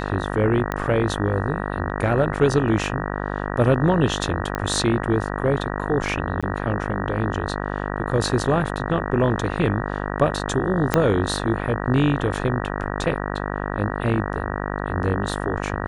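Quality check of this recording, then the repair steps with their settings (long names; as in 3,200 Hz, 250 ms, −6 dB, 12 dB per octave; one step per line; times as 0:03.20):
mains buzz 50 Hz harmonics 38 −27 dBFS
0:00.72: click −11 dBFS
0:04.55: click −13 dBFS
0:06.41–0:06.43: drop-out 16 ms
0:10.94: click −3 dBFS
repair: click removal
hum removal 50 Hz, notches 38
repair the gap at 0:06.41, 16 ms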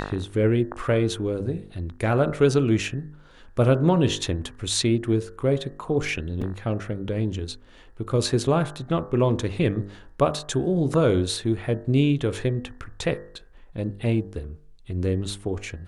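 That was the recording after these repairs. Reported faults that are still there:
0:10.94: click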